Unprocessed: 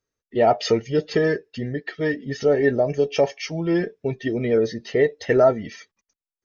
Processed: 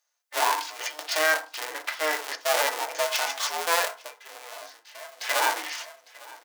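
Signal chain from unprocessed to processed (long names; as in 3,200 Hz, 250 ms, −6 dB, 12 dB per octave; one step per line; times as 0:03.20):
sub-harmonics by changed cycles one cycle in 2, inverted
brickwall limiter −18 dBFS, peak gain reduction 11 dB
harmonic and percussive parts rebalanced percussive −10 dB
0:02.35–0:02.95: noise gate −28 dBFS, range −24 dB
high-shelf EQ 2,400 Hz +8.5 dB
0:00.55–0:00.99: compressor whose output falls as the input rises −41 dBFS, ratio −1
high-pass filter 680 Hz 24 dB per octave
repeating echo 854 ms, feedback 19%, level −21.5 dB
0:03.94–0:05.29: duck −17.5 dB, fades 0.19 s
feedback delay network reverb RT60 0.34 s, low-frequency decay 1.2×, high-frequency decay 0.35×, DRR 3 dB
level +6 dB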